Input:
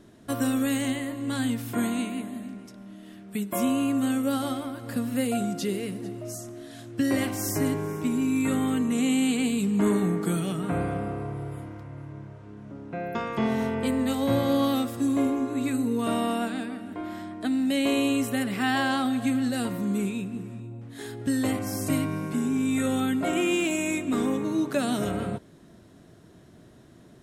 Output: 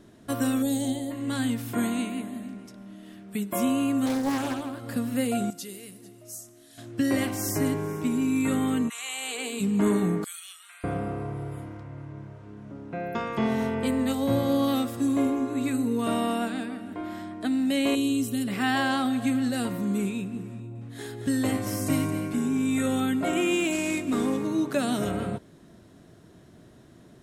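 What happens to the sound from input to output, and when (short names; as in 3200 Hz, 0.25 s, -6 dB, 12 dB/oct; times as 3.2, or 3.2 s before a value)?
0.62–1.11 spectral gain 970–3100 Hz -15 dB
4.06–4.8 Doppler distortion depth 0.49 ms
5.5–6.78 pre-emphasis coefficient 0.8
8.88–9.59 HPF 1200 Hz -> 290 Hz 24 dB/oct
10.24–10.84 Bessel high-pass 2800 Hz, order 4
11.77–12.18 bell 13000 Hz -12 dB 0.54 oct
14.12–14.68 bell 2000 Hz -4.5 dB 2.1 oct
17.95–18.48 band shelf 1100 Hz -13.5 dB 2.5 oct
20.53–22.39 echo 0.222 s -9.5 dB
23.72–24.47 CVSD 64 kbps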